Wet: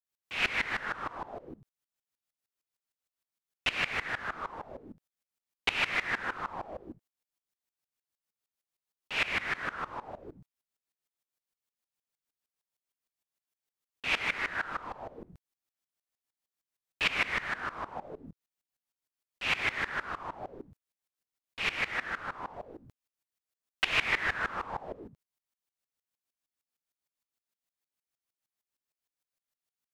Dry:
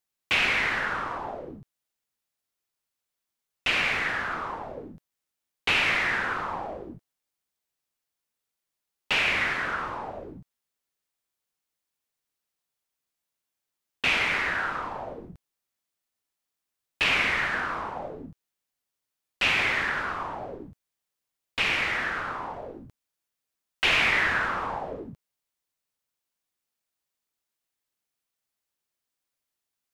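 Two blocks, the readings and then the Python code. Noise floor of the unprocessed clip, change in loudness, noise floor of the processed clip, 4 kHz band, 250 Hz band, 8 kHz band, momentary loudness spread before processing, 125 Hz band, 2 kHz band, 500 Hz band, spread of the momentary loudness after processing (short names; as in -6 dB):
under -85 dBFS, -7.0 dB, under -85 dBFS, -7.0 dB, -7.0 dB, -7.0 dB, 18 LU, -6.5 dB, -7.0 dB, -7.0 dB, 18 LU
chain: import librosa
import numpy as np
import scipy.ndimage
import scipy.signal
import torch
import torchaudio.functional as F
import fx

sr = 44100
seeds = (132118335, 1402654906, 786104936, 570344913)

y = fx.tremolo_decay(x, sr, direction='swelling', hz=6.5, depth_db=20)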